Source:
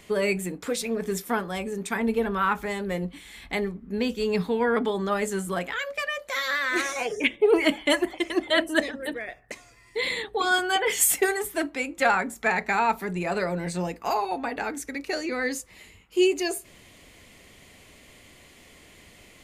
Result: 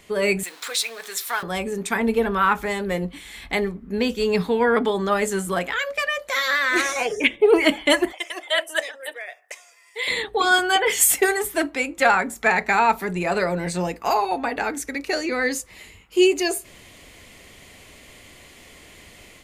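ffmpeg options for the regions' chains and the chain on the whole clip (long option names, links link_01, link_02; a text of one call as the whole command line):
ffmpeg -i in.wav -filter_complex "[0:a]asettb=1/sr,asplit=3[link_01][link_02][link_03];[link_01]atrim=end=0.434[link_04];[link_02]atrim=start=0.43:end=1.43,asetpts=PTS-STARTPTS,afade=type=in:duration=0.004:curve=qsin,afade=type=out:start_time=0.996:duration=0.004:curve=qsin,aeval=exprs='val(0)+0.5*0.0112*sgn(val(0))':channel_layout=same,highpass=1100,equalizer=frequency=4000:width_type=o:width=0.31:gain=7[link_05];[link_03]atrim=start=1.426[link_06];[link_04][link_05]acrossfade=duration=0.004:curve1=hsin:curve2=qsin[link_07];[link_07][link_06]acrossfade=duration=0.004:curve1=qsin:curve2=hsin,asettb=1/sr,asplit=3[link_08][link_09][link_10];[link_08]atrim=end=8.124[link_11];[link_09]atrim=start=8.12:end=10.08,asetpts=PTS-STARTPTS,afade=type=in:duration=0.004:curve=qsin,afade=type=out:start_time=1.956:duration=0.004:curve=qsin,highpass=frequency=580:width=0.5412,highpass=frequency=580:width=1.3066,equalizer=frequency=1100:width=0.62:gain=-6,bandreject=frequency=4200:width=5.6[link_12];[link_10]atrim=start=10.076[link_13];[link_11][link_12]acrossfade=duration=0.004:curve1=hsin:curve2=qsin[link_14];[link_14][link_13]acrossfade=duration=0.004:curve1=qsin:curve2=hsin,equalizer=frequency=190:width_type=o:width=1.8:gain=-2.5,dynaudnorm=framelen=130:gausssize=3:maxgain=5.5dB" out.wav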